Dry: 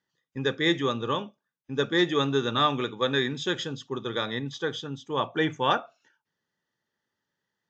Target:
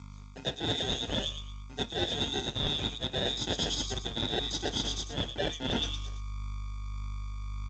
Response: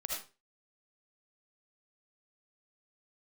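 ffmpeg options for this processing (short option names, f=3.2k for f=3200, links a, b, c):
-filter_complex "[0:a]aderivative,bandreject=f=206.3:t=h:w=4,bandreject=f=412.6:t=h:w=4,bandreject=f=618.9:t=h:w=4,bandreject=f=825.2:t=h:w=4,bandreject=f=1.0315k:t=h:w=4,bandreject=f=1.2378k:t=h:w=4,bandreject=f=1.4441k:t=h:w=4,bandreject=f=1.6504k:t=h:w=4,bandreject=f=1.8567k:t=h:w=4,bandreject=f=2.063k:t=h:w=4,bandreject=f=2.2693k:t=h:w=4,bandreject=f=2.4756k:t=h:w=4,bandreject=f=2.6819k:t=h:w=4,bandreject=f=2.8882k:t=h:w=4,bandreject=f=3.0945k:t=h:w=4,bandreject=f=3.3008k:t=h:w=4,bandreject=f=3.5071k:t=h:w=4,bandreject=f=3.7134k:t=h:w=4,bandreject=f=3.9197k:t=h:w=4,bandreject=f=4.126k:t=h:w=4,bandreject=f=4.3323k:t=h:w=4,bandreject=f=4.5386k:t=h:w=4,bandreject=f=4.7449k:t=h:w=4,bandreject=f=4.9512k:t=h:w=4,bandreject=f=5.1575k:t=h:w=4,bandreject=f=5.3638k:t=h:w=4,bandreject=f=5.5701k:t=h:w=4,bandreject=f=5.7764k:t=h:w=4,bandreject=f=5.9827k:t=h:w=4,aeval=exprs='val(0)+0.000562*(sin(2*PI*50*n/s)+sin(2*PI*2*50*n/s)/2+sin(2*PI*3*50*n/s)/3+sin(2*PI*4*50*n/s)/4+sin(2*PI*5*50*n/s)/5)':c=same,asubboost=boost=5.5:cutoff=78,aphaser=in_gain=1:out_gain=1:delay=2.9:decay=0.27:speed=1.7:type=triangular,apsyclip=25.5dB,acrossover=split=3300[a][b];[a]acrusher=samples=38:mix=1:aa=0.000001[c];[b]aecho=1:1:114|228|342|456:0.473|0.142|0.0426|0.0128[d];[c][d]amix=inputs=2:normalize=0,acrossover=split=5000[e][f];[f]acompressor=threshold=-37dB:ratio=4:attack=1:release=60[g];[e][g]amix=inputs=2:normalize=0,highpass=58,areverse,acompressor=threshold=-24dB:ratio=10,areverse,volume=-4dB" -ar 16000 -c:a g722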